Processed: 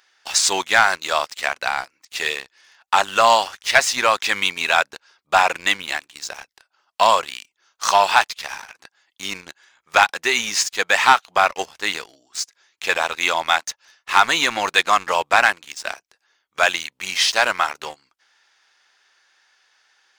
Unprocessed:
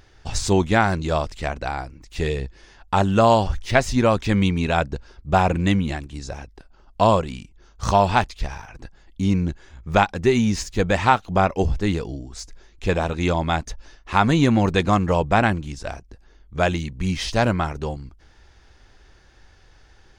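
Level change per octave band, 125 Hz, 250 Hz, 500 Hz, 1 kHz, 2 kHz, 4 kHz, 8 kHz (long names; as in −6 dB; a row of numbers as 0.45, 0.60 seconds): below −20 dB, −16.5 dB, −3.0 dB, +3.5 dB, +8.5 dB, +10.0 dB, +11.0 dB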